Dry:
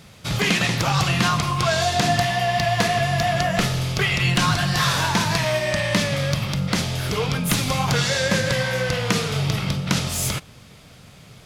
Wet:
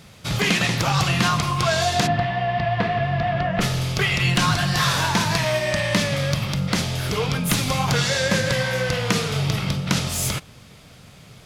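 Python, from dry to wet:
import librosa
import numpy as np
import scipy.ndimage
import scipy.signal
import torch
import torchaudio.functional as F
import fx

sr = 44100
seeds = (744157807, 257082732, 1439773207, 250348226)

y = fx.air_absorb(x, sr, metres=390.0, at=(2.06, 3.6), fade=0.02)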